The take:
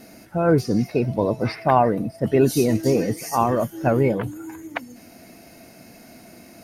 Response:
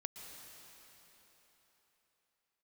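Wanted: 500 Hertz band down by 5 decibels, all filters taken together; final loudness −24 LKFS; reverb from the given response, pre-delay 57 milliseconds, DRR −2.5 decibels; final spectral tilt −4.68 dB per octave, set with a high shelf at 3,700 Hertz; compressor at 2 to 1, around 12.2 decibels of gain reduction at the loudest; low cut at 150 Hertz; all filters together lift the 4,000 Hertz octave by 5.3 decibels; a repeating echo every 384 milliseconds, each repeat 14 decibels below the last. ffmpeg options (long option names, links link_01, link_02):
-filter_complex "[0:a]highpass=150,equalizer=frequency=500:width_type=o:gain=-6.5,highshelf=frequency=3700:gain=4.5,equalizer=frequency=4000:width_type=o:gain=3.5,acompressor=threshold=-38dB:ratio=2,aecho=1:1:384|768:0.2|0.0399,asplit=2[link_01][link_02];[1:a]atrim=start_sample=2205,adelay=57[link_03];[link_02][link_03]afir=irnorm=-1:irlink=0,volume=5dB[link_04];[link_01][link_04]amix=inputs=2:normalize=0,volume=7.5dB"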